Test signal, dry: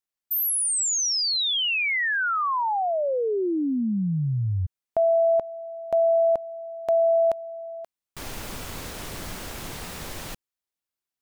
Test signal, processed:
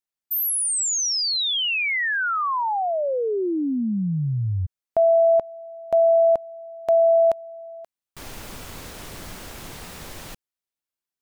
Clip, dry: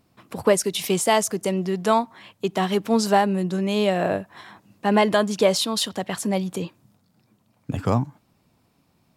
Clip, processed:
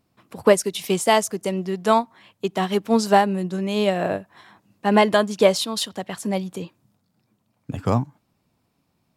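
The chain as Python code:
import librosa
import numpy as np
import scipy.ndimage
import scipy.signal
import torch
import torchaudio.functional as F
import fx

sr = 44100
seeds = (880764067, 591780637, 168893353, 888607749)

y = fx.upward_expand(x, sr, threshold_db=-31.0, expansion=1.5)
y = F.gain(torch.from_numpy(y), 3.5).numpy()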